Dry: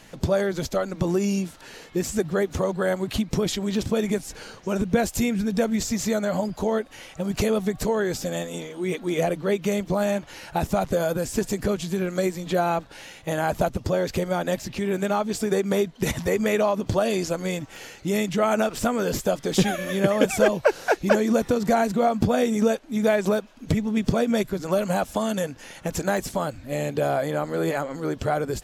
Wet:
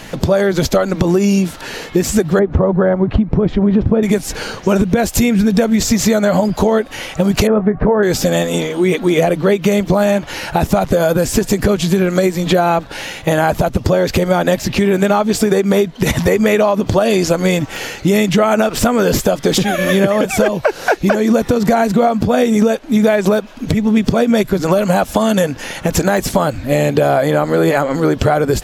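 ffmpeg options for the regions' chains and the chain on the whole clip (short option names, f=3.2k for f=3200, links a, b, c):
-filter_complex "[0:a]asettb=1/sr,asplit=3[a][b][c];[a]atrim=end=2.394[d];[b]atrim=start=2.39:end=4.03,asetpts=PTS-STARTPTS,afade=t=in:d=0.004:c=qsin,afade=t=out:st=1.636:d=0.004:c=qsin,lowpass=1.3k,lowshelf=f=140:g=9[e];[c]atrim=start=4.026[f];[d][e]acrossfade=d=0.004:c1=hsin:c2=qsin[g];[g][f]acrossfade=d=0.004:c1=qsin:c2=hsin,asettb=1/sr,asplit=3[h][i][j];[h]atrim=end=7.474[k];[i]atrim=start=7.47:end=8.03,asetpts=PTS-STARTPTS,afade=t=in:d=0.004:c=qsin,afade=t=out:st=0.556:d=0.004:c=qsin,lowpass=f=1.7k:w=0.5412,lowpass=f=1.7k:w=1.3066,asplit=2[l][m];[m]adelay=24,volume=-13dB[n];[l][n]amix=inputs=2:normalize=0,atrim=end_sample=24696[o];[j]atrim=start=8.026[p];[k][o]acrossfade=d=0.004:c1=hsin:c2=qsin[q];[q][p]acrossfade=d=0.004:c1=qsin:c2=hsin,equalizer=f=8k:w=0.98:g=-3.5,acompressor=threshold=-26dB:ratio=6,alimiter=level_in=17.5dB:limit=-1dB:release=50:level=0:latency=1,volume=-1dB"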